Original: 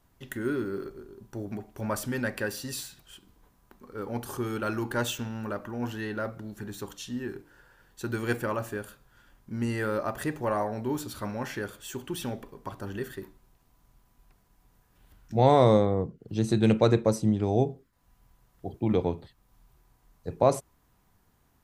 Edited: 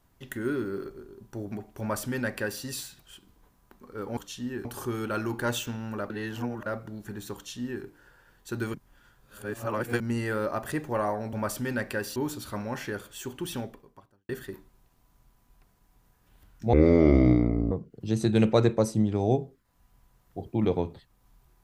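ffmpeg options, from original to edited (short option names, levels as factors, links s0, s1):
-filter_complex "[0:a]asplit=12[s0][s1][s2][s3][s4][s5][s6][s7][s8][s9][s10][s11];[s0]atrim=end=4.172[s12];[s1]atrim=start=6.868:end=7.352[s13];[s2]atrim=start=4.168:end=5.622[s14];[s3]atrim=start=5.618:end=6.182,asetpts=PTS-STARTPTS,areverse[s15];[s4]atrim=start=6.178:end=8.262[s16];[s5]atrim=start=8.258:end=9.522,asetpts=PTS-STARTPTS,areverse[s17];[s6]atrim=start=9.518:end=10.852[s18];[s7]atrim=start=1.798:end=2.632[s19];[s8]atrim=start=10.848:end=12.98,asetpts=PTS-STARTPTS,afade=t=out:st=1.422:d=0.71:c=qua[s20];[s9]atrim=start=12.98:end=15.424,asetpts=PTS-STARTPTS,afade=t=in:d=0.004:c=hsin[s21];[s10]atrim=start=15.42:end=15.99,asetpts=PTS-STARTPTS,asetrate=25578,aresample=44100[s22];[s11]atrim=start=15.986[s23];[s12][s13]acrossfade=d=0.004:c1=hsin:c2=hsin[s24];[s24][s14]acrossfade=d=0.004:c1=hsin:c2=hsin[s25];[s25][s15]acrossfade=d=0.004:c1=hsin:c2=hsin[s26];[s26][s16]acrossfade=d=0.004:c1=hsin:c2=hsin[s27];[s27][s17]acrossfade=d=0.004:c1=hsin:c2=hsin[s28];[s28][s18]acrossfade=d=0.004:c1=hsin:c2=hsin[s29];[s29][s19]acrossfade=d=0.004:c1=hsin:c2=hsin[s30];[s20][s21]concat=n=2:v=0:a=1[s31];[s30][s31]acrossfade=d=0.004:c1=hsin:c2=hsin[s32];[s32][s22]acrossfade=d=0.004:c1=hsin:c2=hsin[s33];[s33][s23]acrossfade=d=0.004:c1=hsin:c2=hsin"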